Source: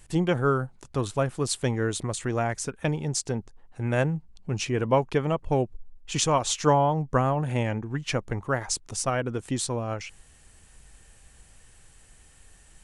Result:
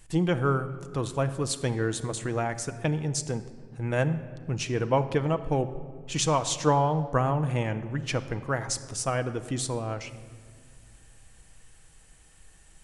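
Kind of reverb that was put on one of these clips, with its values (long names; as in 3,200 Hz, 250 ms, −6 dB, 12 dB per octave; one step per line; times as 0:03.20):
rectangular room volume 2,800 cubic metres, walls mixed, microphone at 0.62 metres
level −2 dB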